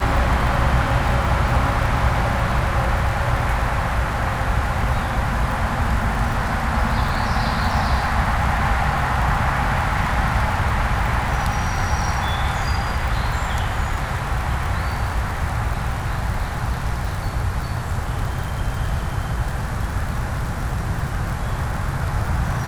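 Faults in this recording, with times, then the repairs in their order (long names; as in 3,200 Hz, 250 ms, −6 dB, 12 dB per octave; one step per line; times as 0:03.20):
surface crackle 59 per second −26 dBFS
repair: click removal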